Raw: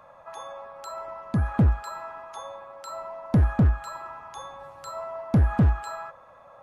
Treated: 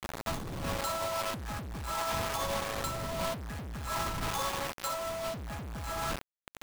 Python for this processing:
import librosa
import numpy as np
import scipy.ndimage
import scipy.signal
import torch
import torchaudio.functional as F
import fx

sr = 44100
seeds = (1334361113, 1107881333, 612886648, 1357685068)

y = fx.dmg_wind(x, sr, seeds[0], corner_hz=180.0, level_db=-38.0)
y = y + 10.0 ** (-14.5 / 20.0) * np.pad(y, (int(161 * sr / 1000.0), 0))[:len(y)]
y = fx.quant_companded(y, sr, bits=2)
y = fx.over_compress(y, sr, threshold_db=-29.0, ratio=-0.5)
y = y * 10.0 ** (-5.0 / 20.0)